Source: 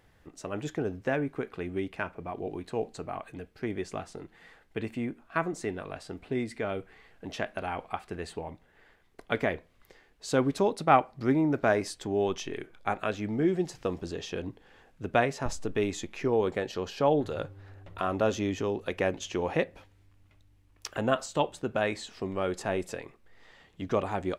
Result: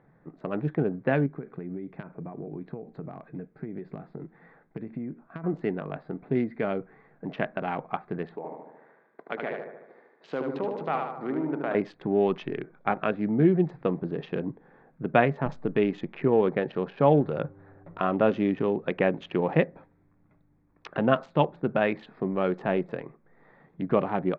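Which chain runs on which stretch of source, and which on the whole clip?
1.26–5.44 s: compression 16:1, threshold -35 dBFS + dynamic bell 970 Hz, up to -6 dB, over -53 dBFS, Q 0.7
8.36–11.75 s: high-pass 350 Hz + compression 2:1, threshold -36 dBFS + feedback delay 75 ms, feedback 59%, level -3.5 dB
whole clip: local Wiener filter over 15 samples; low-pass 3.1 kHz 24 dB/octave; resonant low shelf 110 Hz -10 dB, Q 3; trim +3.5 dB

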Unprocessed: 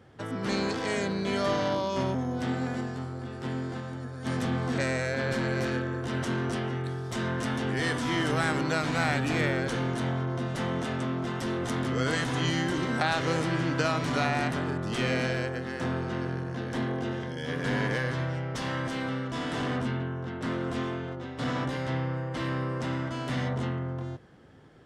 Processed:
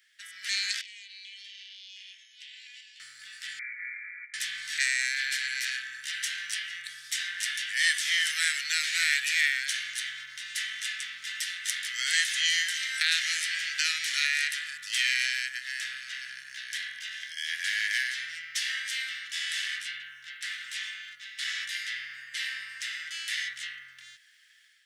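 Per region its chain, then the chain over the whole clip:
0.81–3.00 s: ladder high-pass 2.4 kHz, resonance 55% + distance through air 71 m + compression 12:1, threshold -50 dBFS
3.59–4.34 s: brick-wall FIR high-pass 590 Hz + compressor with a negative ratio -45 dBFS, ratio -0.5 + frequency inversion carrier 3 kHz
whole clip: elliptic high-pass 1.8 kHz, stop band 50 dB; treble shelf 8.4 kHz +9.5 dB; level rider gain up to 6 dB; trim +2 dB

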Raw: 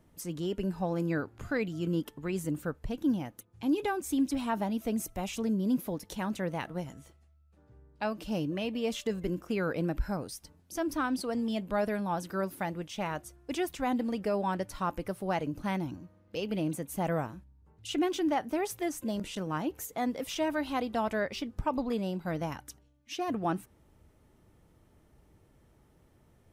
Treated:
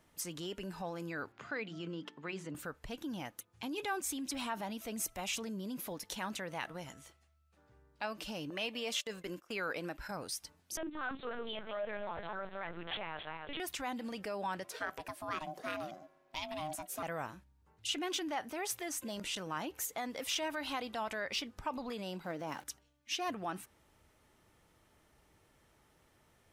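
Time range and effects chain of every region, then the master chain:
1.32–2.55 s: high-pass 130 Hz 24 dB/octave + distance through air 140 m + hum notches 60/120/180/240/300/360 Hz
8.50–10.11 s: gate -41 dBFS, range -15 dB + bass shelf 170 Hz -11 dB
10.77–13.60 s: backward echo that repeats 144 ms, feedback 55%, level -8 dB + comb 6.5 ms, depth 42% + LPC vocoder at 8 kHz pitch kept
14.64–17.03 s: peaking EQ 410 Hz -7.5 dB 0.49 oct + ring modulator 460 Hz
22.24–22.64 s: jump at every zero crossing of -47.5 dBFS + high-pass 240 Hz + tilt shelf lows +7 dB, about 740 Hz
whole clip: treble shelf 9.3 kHz -6 dB; peak limiter -28 dBFS; tilt shelf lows -7.5 dB, about 640 Hz; trim -2 dB

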